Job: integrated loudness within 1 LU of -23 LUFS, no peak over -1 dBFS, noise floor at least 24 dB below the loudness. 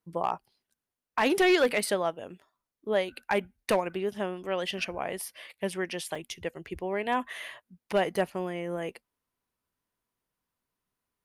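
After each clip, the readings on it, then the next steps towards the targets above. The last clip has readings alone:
clipped 0.3%; flat tops at -17.0 dBFS; dropouts 2; longest dropout 4.0 ms; loudness -30.0 LUFS; peak -17.0 dBFS; loudness target -23.0 LUFS
-> clip repair -17 dBFS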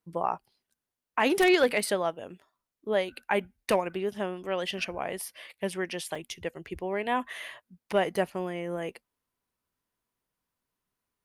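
clipped 0.0%; dropouts 2; longest dropout 4.0 ms
-> interpolate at 6.15/8.16, 4 ms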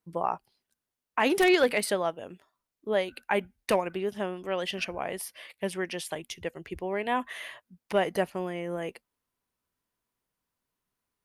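dropouts 0; loudness -30.0 LUFS; peak -9.0 dBFS; loudness target -23.0 LUFS
-> gain +7 dB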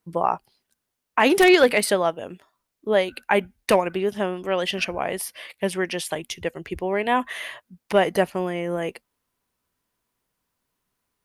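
loudness -23.0 LUFS; peak -2.0 dBFS; noise floor -81 dBFS

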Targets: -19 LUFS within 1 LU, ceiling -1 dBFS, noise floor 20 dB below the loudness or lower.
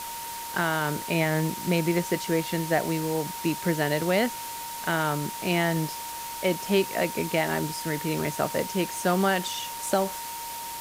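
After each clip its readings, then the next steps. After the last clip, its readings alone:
steady tone 930 Hz; tone level -36 dBFS; noise floor -36 dBFS; noise floor target -47 dBFS; loudness -27.0 LUFS; peak -10.5 dBFS; loudness target -19.0 LUFS
-> notch 930 Hz, Q 30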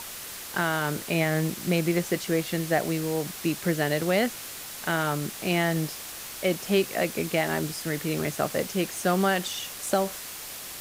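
steady tone none; noise floor -39 dBFS; noise floor target -48 dBFS
-> noise print and reduce 9 dB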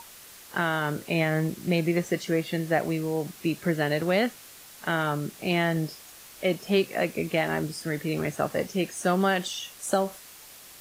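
noise floor -48 dBFS; loudness -27.5 LUFS; peak -11.5 dBFS; loudness target -19.0 LUFS
-> gain +8.5 dB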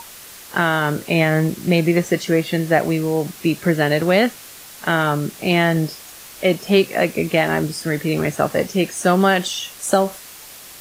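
loudness -19.0 LUFS; peak -3.0 dBFS; noise floor -40 dBFS

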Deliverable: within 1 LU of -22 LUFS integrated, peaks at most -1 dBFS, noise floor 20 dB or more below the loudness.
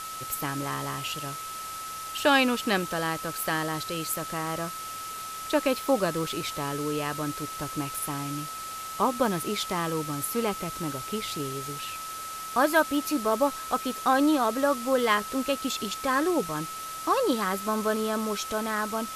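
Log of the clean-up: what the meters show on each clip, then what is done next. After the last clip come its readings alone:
steady tone 1300 Hz; tone level -36 dBFS; noise floor -37 dBFS; noise floor target -48 dBFS; loudness -28.0 LUFS; peak -7.5 dBFS; loudness target -22.0 LUFS
-> notch 1300 Hz, Q 30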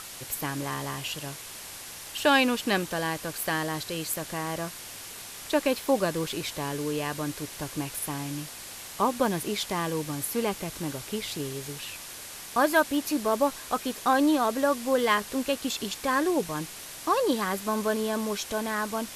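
steady tone none; noise floor -42 dBFS; noise floor target -49 dBFS
-> denoiser 7 dB, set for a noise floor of -42 dBFS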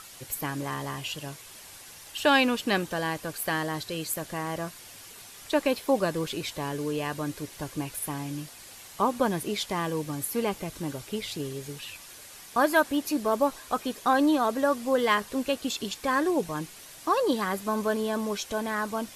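noise floor -47 dBFS; noise floor target -49 dBFS
-> denoiser 6 dB, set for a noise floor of -47 dBFS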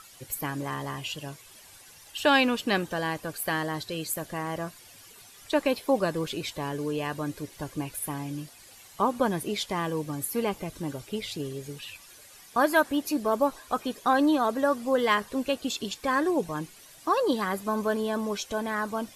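noise floor -52 dBFS; loudness -28.5 LUFS; peak -8.0 dBFS; loudness target -22.0 LUFS
-> gain +6.5 dB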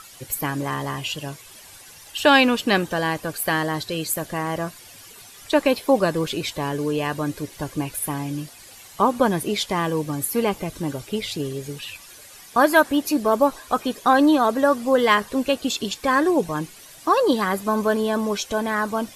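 loudness -22.0 LUFS; peak -1.5 dBFS; noise floor -45 dBFS

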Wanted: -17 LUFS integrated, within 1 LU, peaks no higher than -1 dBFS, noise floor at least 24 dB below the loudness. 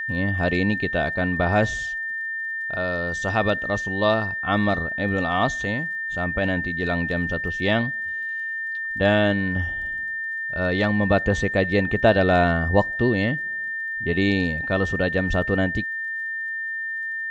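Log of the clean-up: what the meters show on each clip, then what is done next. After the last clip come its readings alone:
ticks 30/s; steady tone 1800 Hz; tone level -26 dBFS; loudness -23.0 LUFS; peak -5.5 dBFS; loudness target -17.0 LUFS
-> de-click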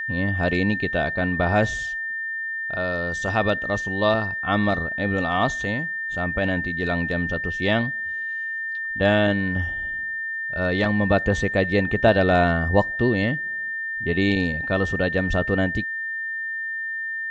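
ticks 0/s; steady tone 1800 Hz; tone level -26 dBFS
-> notch 1800 Hz, Q 30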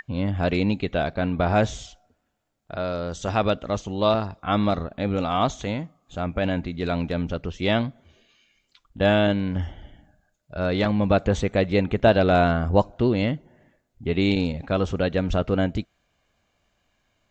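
steady tone none; loudness -24.0 LUFS; peak -5.5 dBFS; loudness target -17.0 LUFS
-> gain +7 dB; limiter -1 dBFS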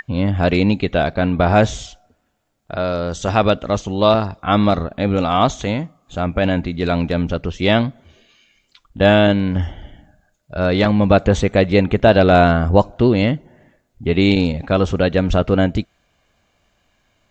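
loudness -17.0 LUFS; peak -1.0 dBFS; noise floor -65 dBFS

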